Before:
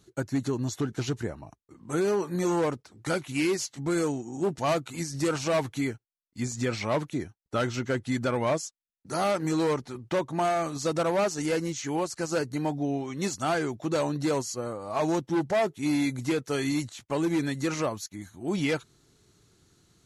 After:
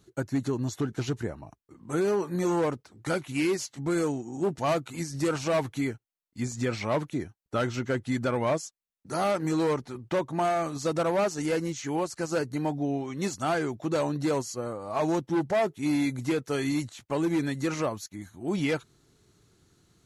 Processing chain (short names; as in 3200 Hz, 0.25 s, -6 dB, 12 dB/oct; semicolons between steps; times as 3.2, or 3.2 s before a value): bell 5900 Hz -3 dB 2.2 oct